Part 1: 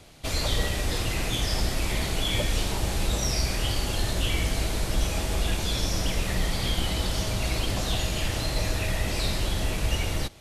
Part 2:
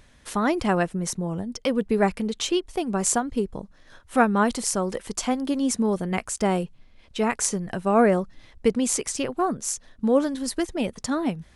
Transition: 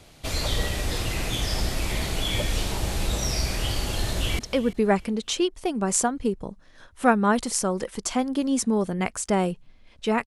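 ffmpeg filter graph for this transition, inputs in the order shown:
ffmpeg -i cue0.wav -i cue1.wav -filter_complex "[0:a]apad=whole_dur=10.26,atrim=end=10.26,atrim=end=4.392[link_01];[1:a]atrim=start=1.508:end=7.38[link_02];[link_01][link_02]acrossfade=duration=0.004:curve1=hsin:curve2=hsin,asplit=2[link_03][link_04];[link_04]afade=type=in:start_time=4.06:duration=0.01,afade=type=out:start_time=4.39:duration=0.01,aecho=0:1:340|680|1020:0.158489|0.0475468|0.014264[link_05];[link_03][link_05]amix=inputs=2:normalize=0" out.wav

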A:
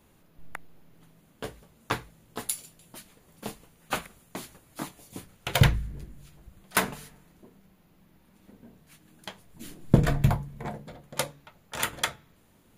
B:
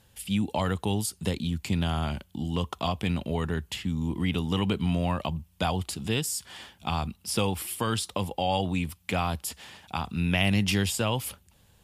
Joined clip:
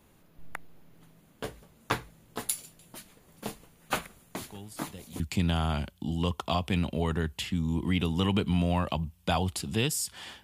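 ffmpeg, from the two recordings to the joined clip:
ffmpeg -i cue0.wav -i cue1.wav -filter_complex "[1:a]asplit=2[link_01][link_02];[0:a]apad=whole_dur=10.43,atrim=end=10.43,atrim=end=5.202[link_03];[link_02]atrim=start=1.528:end=6.76[link_04];[link_01]atrim=start=0.74:end=1.53,asetpts=PTS-STARTPTS,volume=-17.5dB,afade=type=in:duration=0.004:curve=hsin,afade=type=out:start_time=0.786:duration=0.004:curve=hsin,adelay=194481S[link_05];[link_03][link_04]acrossfade=duration=0.004:curve1=hsin:curve2=hsin[link_06];[link_06][link_05]amix=inputs=2:normalize=0" out.wav

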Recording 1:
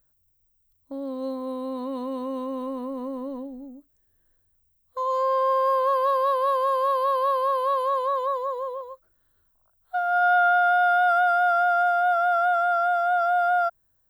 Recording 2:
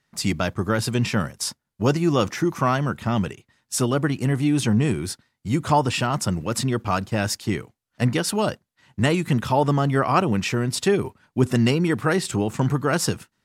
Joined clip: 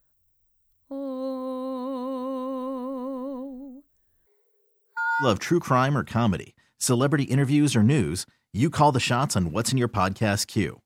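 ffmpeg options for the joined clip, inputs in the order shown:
ffmpeg -i cue0.wav -i cue1.wav -filter_complex "[0:a]asettb=1/sr,asplit=3[link_01][link_02][link_03];[link_01]atrim=end=4.264[link_04];[link_02]atrim=start=4.26:end=5.29,asetpts=PTS-STARTPTS,afade=type=in:duration=0.004:curve=qsin,afade=type=out:start_time=1.026:duration=0.004:curve=qsin,afreqshift=390[link_05];[link_03]atrim=start=5.286[link_06];[link_04][link_05]acrossfade=duration=0.004:curve1=hsin:curve2=qsin[link_07];[link_07][link_06]acrossfade=duration=0.004:curve1=qsin:curve2=hsin,apad=whole_dur=10.85,atrim=end=10.85,atrim=end=5.29,asetpts=PTS-STARTPTS[link_08];[1:a]atrim=start=2.1:end=7.76,asetpts=PTS-STARTPTS[link_09];[link_08][link_09]acrossfade=duration=0.1:curve1=tri:curve2=tri" out.wav

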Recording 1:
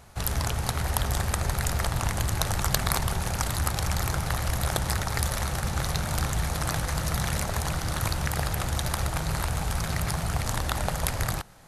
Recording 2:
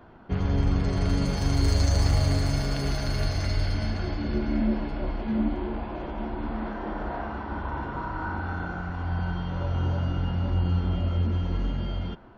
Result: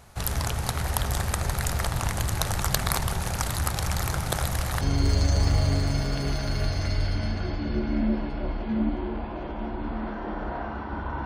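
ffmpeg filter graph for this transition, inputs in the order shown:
ffmpeg -i cue0.wav -i cue1.wav -filter_complex "[0:a]apad=whole_dur=11.25,atrim=end=11.25,asplit=2[link_01][link_02];[link_01]atrim=end=4.282[link_03];[link_02]atrim=start=4.278:end=4.812,asetpts=PTS-STARTPTS,areverse[link_04];[1:a]atrim=start=1.398:end=7.84[link_05];[link_03][link_04]acrossfade=duration=0.004:curve1=hsin:curve2=hsin[link_06];[link_06][link_05]acrossfade=duration=0.004:curve1=hsin:curve2=hsin" out.wav

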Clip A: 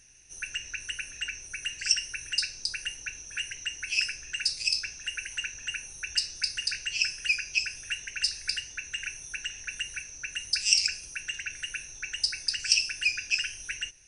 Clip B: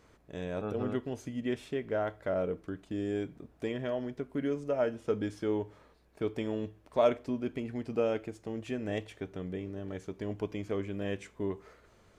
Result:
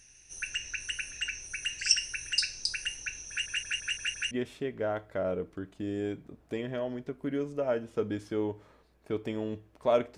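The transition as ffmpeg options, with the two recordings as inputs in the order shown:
ffmpeg -i cue0.wav -i cue1.wav -filter_complex "[0:a]apad=whole_dur=10.17,atrim=end=10.17,asplit=6[link_01][link_02][link_03][link_04][link_05][link_06];[link_01]atrim=end=3.462[link_07];[link_02]atrim=start=3.288:end=3.462[link_08];[link_03]atrim=start=3.288:end=3.462[link_09];[link_04]atrim=start=3.288:end=3.462[link_10];[link_05]atrim=start=3.288:end=3.462[link_11];[link_06]atrim=start=3.288:end=3.462[link_12];[1:a]atrim=start=1.418:end=7.28[link_13];[link_07][link_08]acrossfade=duration=0.004:curve1=hsin:curve2=hsin[link_14];[link_14][link_09]acrossfade=duration=0.004:curve1=hsin:curve2=hsin[link_15];[link_15][link_10]acrossfade=duration=0.004:curve1=hsin:curve2=hsin[link_16];[link_16][link_11]acrossfade=duration=0.004:curve1=hsin:curve2=hsin[link_17];[link_17][link_12]acrossfade=duration=0.004:curve1=hsin:curve2=hsin[link_18];[link_18][link_13]acrossfade=duration=0.004:curve1=hsin:curve2=hsin" out.wav

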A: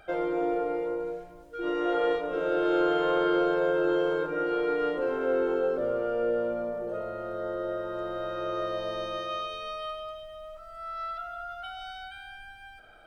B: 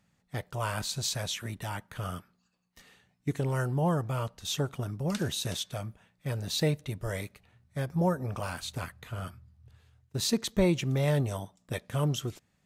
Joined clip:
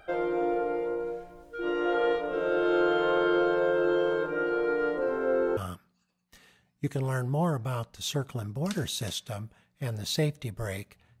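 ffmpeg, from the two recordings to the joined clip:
ffmpeg -i cue0.wav -i cue1.wav -filter_complex "[0:a]asettb=1/sr,asplit=3[link_01][link_02][link_03];[link_01]atrim=end=4.494[link_04];[link_02]atrim=start=4.49:end=5.57,asetpts=PTS-STARTPTS,afade=type=in:duration=0.004:curve=qsin,afade=type=out:start_time=1.076:duration=0.004:curve=qsin,equalizer=frequency=3000:width_type=o:width=0.46:gain=-8.5[link_05];[link_03]atrim=start=5.566[link_06];[link_04][link_05]acrossfade=duration=0.004:curve1=hsin:curve2=qsin[link_07];[link_07][link_06]acrossfade=duration=0.004:curve1=qsin:curve2=hsin,apad=whole_dur=11.2,atrim=end=11.2,atrim=end=5.572[link_08];[1:a]atrim=start=2.008:end=7.64[link_09];[link_08][link_09]acrossfade=duration=0.004:curve1=hsin:curve2=hsin" out.wav

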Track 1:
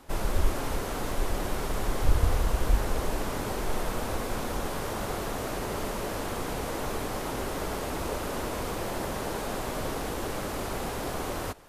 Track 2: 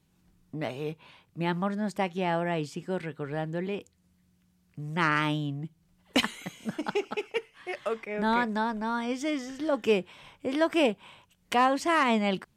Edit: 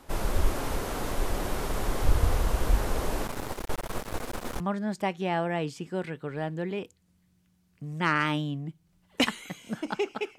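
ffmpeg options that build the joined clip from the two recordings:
ffmpeg -i cue0.wav -i cue1.wav -filter_complex "[0:a]asettb=1/sr,asplit=3[link_01][link_02][link_03];[link_01]atrim=end=3.274[link_04];[link_02]atrim=start=3.27:end=4.6,asetpts=PTS-STARTPTS,afade=type=in:duration=0.004:curve=qsin,afade=type=out:start_time=1.326:duration=0.004:curve=qsin,aeval=exprs='max(val(0),0)':channel_layout=same[link_05];[link_03]atrim=start=4.596[link_06];[link_04][link_05]acrossfade=duration=0.004:curve1=hsin:curve2=qsin[link_07];[link_07][link_06]acrossfade=duration=0.004:curve1=qsin:curve2=hsin,apad=whole_dur=10.38,atrim=end=10.38,atrim=end=4.602[link_08];[1:a]atrim=start=1.558:end=7.34[link_09];[link_08][link_09]acrossfade=duration=0.004:curve1=hsin:curve2=hsin" out.wav

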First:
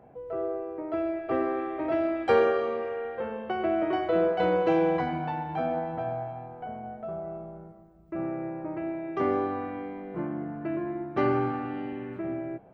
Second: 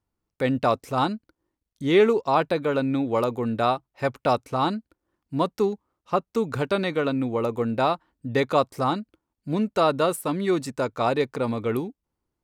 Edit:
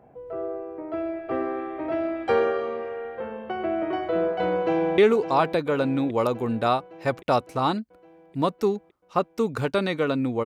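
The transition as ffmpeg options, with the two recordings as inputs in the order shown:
ffmpeg -i cue0.wav -i cue1.wav -filter_complex "[0:a]apad=whole_dur=10.45,atrim=end=10.45,atrim=end=4.982[link_01];[1:a]atrim=start=1.948:end=7.42[link_02];[link_01][link_02]acrossfade=duration=0.004:curve1=hsin:curve2=hsin,asplit=2[link_03][link_04];[link_04]afade=type=in:start_time=4.54:duration=0.01,afade=type=out:start_time=4.98:duration=0.01,aecho=0:1:560|1120|1680|2240|2800|3360|3920|4480:0.298538|0.19405|0.126132|0.0819861|0.0532909|0.0346391|0.0225154|0.014635[link_05];[link_03][link_05]amix=inputs=2:normalize=0" out.wav

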